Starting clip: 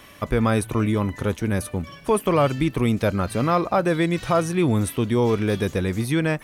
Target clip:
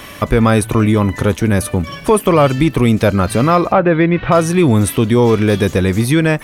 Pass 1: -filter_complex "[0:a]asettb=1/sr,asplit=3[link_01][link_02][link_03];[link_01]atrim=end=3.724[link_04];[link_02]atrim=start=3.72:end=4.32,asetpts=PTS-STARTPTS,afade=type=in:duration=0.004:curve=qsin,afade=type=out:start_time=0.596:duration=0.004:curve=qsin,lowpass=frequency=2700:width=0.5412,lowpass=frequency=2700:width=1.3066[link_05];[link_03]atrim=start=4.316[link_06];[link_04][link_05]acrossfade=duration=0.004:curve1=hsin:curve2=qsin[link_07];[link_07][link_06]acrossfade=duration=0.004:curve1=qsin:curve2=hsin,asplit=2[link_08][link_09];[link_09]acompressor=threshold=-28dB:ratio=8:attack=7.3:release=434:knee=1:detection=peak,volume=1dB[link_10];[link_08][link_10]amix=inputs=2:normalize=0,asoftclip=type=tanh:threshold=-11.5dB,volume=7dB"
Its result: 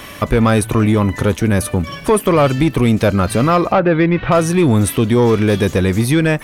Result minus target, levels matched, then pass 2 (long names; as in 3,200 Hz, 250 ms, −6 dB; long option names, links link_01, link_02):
soft clipping: distortion +10 dB
-filter_complex "[0:a]asettb=1/sr,asplit=3[link_01][link_02][link_03];[link_01]atrim=end=3.724[link_04];[link_02]atrim=start=3.72:end=4.32,asetpts=PTS-STARTPTS,afade=type=in:duration=0.004:curve=qsin,afade=type=out:start_time=0.596:duration=0.004:curve=qsin,lowpass=frequency=2700:width=0.5412,lowpass=frequency=2700:width=1.3066[link_05];[link_03]atrim=start=4.316[link_06];[link_04][link_05]acrossfade=duration=0.004:curve1=hsin:curve2=qsin[link_07];[link_07][link_06]acrossfade=duration=0.004:curve1=qsin:curve2=hsin,asplit=2[link_08][link_09];[link_09]acompressor=threshold=-28dB:ratio=8:attack=7.3:release=434:knee=1:detection=peak,volume=1dB[link_10];[link_08][link_10]amix=inputs=2:normalize=0,asoftclip=type=tanh:threshold=-5.5dB,volume=7dB"